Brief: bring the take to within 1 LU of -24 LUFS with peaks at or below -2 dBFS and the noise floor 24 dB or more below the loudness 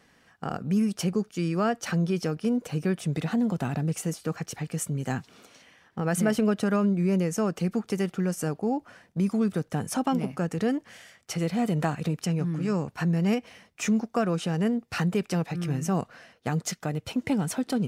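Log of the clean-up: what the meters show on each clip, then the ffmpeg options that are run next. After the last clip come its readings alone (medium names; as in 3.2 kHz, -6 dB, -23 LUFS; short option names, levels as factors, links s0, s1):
loudness -28.0 LUFS; peak level -13.5 dBFS; loudness target -24.0 LUFS
-> -af "volume=1.58"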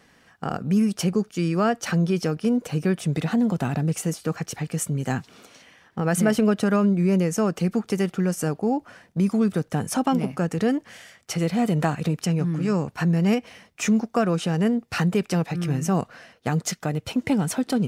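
loudness -24.0 LUFS; peak level -9.5 dBFS; noise floor -58 dBFS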